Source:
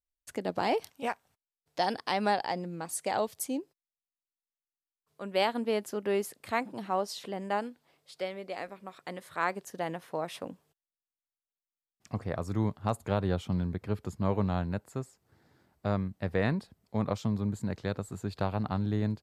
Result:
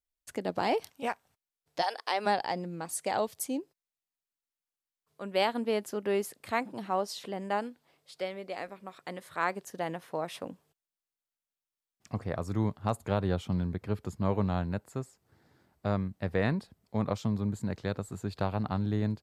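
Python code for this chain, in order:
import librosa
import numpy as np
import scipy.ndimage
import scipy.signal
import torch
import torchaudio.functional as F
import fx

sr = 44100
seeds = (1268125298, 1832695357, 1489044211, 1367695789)

y = fx.highpass(x, sr, hz=fx.line((1.81, 640.0), (2.25, 290.0)), slope=24, at=(1.81, 2.25), fade=0.02)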